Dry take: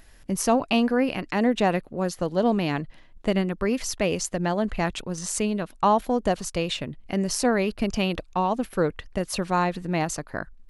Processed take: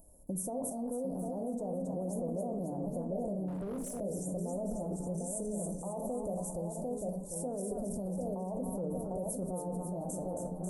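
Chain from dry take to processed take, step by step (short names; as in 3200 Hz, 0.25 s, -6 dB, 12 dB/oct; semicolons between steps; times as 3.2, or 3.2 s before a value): 6.71–7.32 passive tone stack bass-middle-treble 10-0-10; on a send at -5 dB: reverb RT60 0.50 s, pre-delay 3 ms; on the sum: limiter -17 dBFS, peak gain reduction 10.5 dB; low shelf 400 Hz -10 dB; split-band echo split 830 Hz, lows 0.748 s, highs 0.272 s, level -5 dB; in parallel at +0.5 dB: negative-ratio compressor -34 dBFS, ratio -0.5; on the sum: Chebyshev band-stop 650–8800 Hz, order 3; 0.98–1.44 de-esser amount 80%; 3.48–4 hard clip -26.5 dBFS, distortion -26 dB; gain -8 dB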